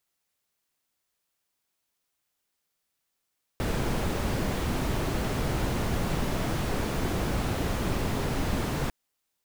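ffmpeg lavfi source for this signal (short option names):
-f lavfi -i "anoisesrc=c=brown:a=0.197:d=5.3:r=44100:seed=1"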